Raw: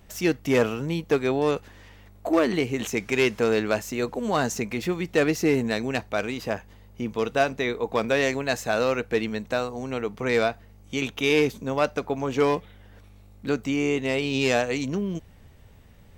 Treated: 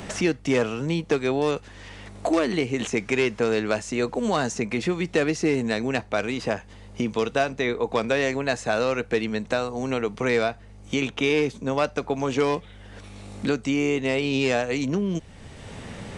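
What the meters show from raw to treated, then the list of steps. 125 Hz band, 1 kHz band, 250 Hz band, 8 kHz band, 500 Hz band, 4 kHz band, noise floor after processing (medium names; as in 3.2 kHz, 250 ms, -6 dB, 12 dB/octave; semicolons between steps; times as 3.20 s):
+1.0 dB, 0.0 dB, +1.0 dB, 0.0 dB, 0.0 dB, +0.5 dB, -46 dBFS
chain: resampled via 22.05 kHz; three bands compressed up and down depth 70%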